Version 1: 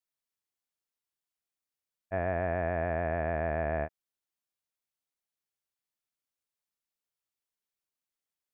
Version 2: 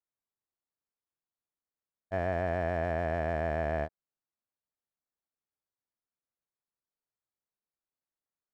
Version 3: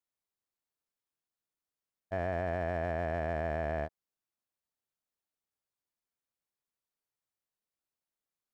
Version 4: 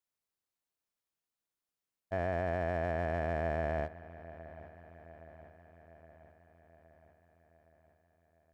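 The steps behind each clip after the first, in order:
local Wiener filter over 15 samples
peak limiter -22.5 dBFS, peak gain reduction 3 dB
feedback echo behind a low-pass 817 ms, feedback 60%, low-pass 3.6 kHz, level -17 dB

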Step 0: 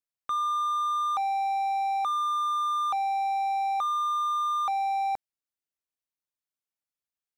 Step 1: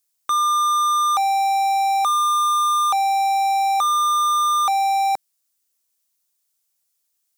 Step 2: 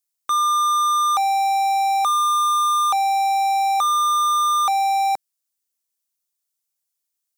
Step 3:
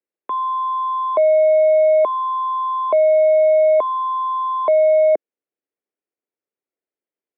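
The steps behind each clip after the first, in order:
tone controls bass -6 dB, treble +14 dB; trim +8.5 dB
upward expansion 1.5:1, over -33 dBFS
resonant low shelf 780 Hz +12.5 dB, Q 1.5; mistuned SSB -160 Hz 510–2500 Hz

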